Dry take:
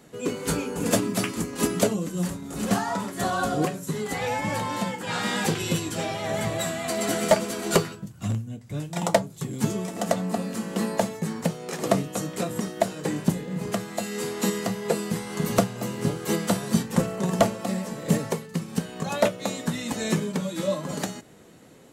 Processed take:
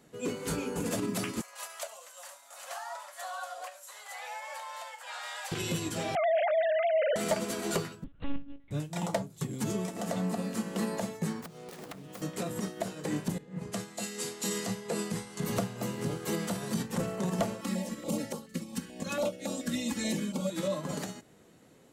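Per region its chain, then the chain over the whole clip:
1.41–5.52 s: elliptic high-pass 590 Hz + compression 2:1, threshold -35 dBFS + feedback echo behind a high-pass 71 ms, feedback 75%, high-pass 4.5 kHz, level -11.5 dB
6.15–7.16 s: formants replaced by sine waves + low-pass 1.7 kHz 6 dB/octave + level flattener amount 70%
8.04–8.71 s: monotone LPC vocoder at 8 kHz 280 Hz + loudspeaker Doppler distortion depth 0.12 ms
11.41–12.22 s: self-modulated delay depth 0.72 ms + compression 16:1, threshold -33 dBFS
13.38–15.42 s: low-pass 9.7 kHz + treble shelf 4.5 kHz +9 dB + three bands expanded up and down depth 100%
17.61–20.50 s: comb 3.6 ms, depth 70% + step-sequenced notch 7 Hz 650–2100 Hz
whole clip: peak limiter -20.5 dBFS; upward expansion 1.5:1, over -39 dBFS

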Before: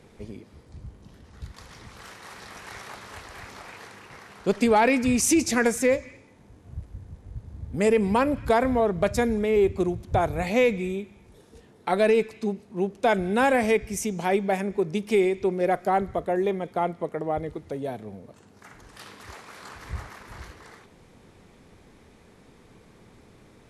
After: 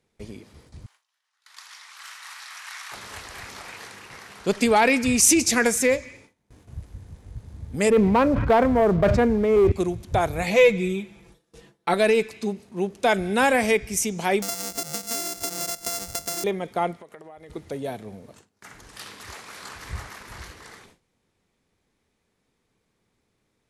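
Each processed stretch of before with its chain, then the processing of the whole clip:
0.86–2.92 s: high-pass 970 Hz 24 dB/octave + treble shelf 5.5 kHz -3 dB + delay 83 ms -10 dB
7.90–9.72 s: low-pass 1.4 kHz + waveshaping leveller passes 1 + decay stretcher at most 30 dB/s
10.47–11.94 s: treble shelf 5.3 kHz -5.5 dB + comb 6 ms, depth 79%
14.42–16.44 s: sorted samples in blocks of 64 samples + resonant high shelf 4.3 kHz +9 dB, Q 1.5 + compression 5:1, threshold -31 dBFS
16.97–17.50 s: bass shelf 390 Hz -10 dB + compression 20:1, threshold -40 dBFS
whole clip: gate with hold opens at -41 dBFS; treble shelf 2 kHz +8 dB

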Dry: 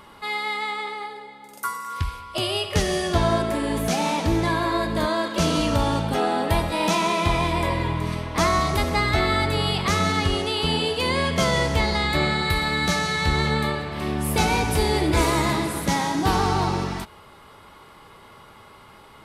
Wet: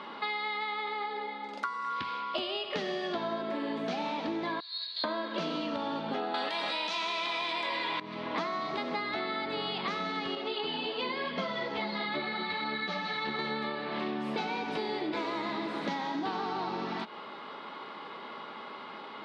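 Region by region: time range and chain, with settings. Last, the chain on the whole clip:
4.60–5.04 s: band-pass filter 4.2 kHz, Q 13 + tilt EQ +4 dB/octave
6.34–8.00 s: tilt EQ +4.5 dB/octave + level flattener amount 100%
10.35–13.39 s: low-pass 5.5 kHz + three-phase chorus
whole clip: Chebyshev band-pass 220–4100 Hz, order 3; compression 10:1, threshold -36 dBFS; trim +5 dB

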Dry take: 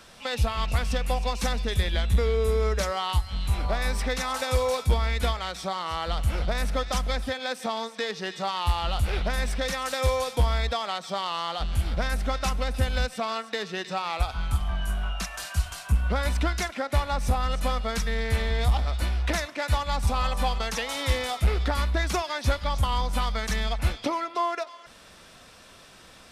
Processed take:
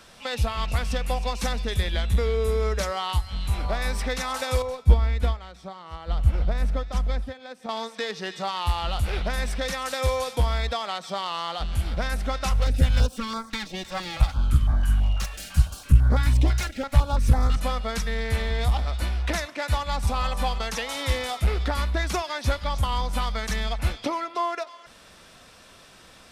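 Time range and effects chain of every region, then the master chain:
4.62–7.69 s: tilt EQ -2 dB/octave + upward expansion, over -31 dBFS
12.50–17.57 s: comb filter that takes the minimum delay 3.6 ms + peaking EQ 66 Hz +9.5 dB 2.9 oct + step-sequenced notch 6 Hz 280–2800 Hz
whole clip: none

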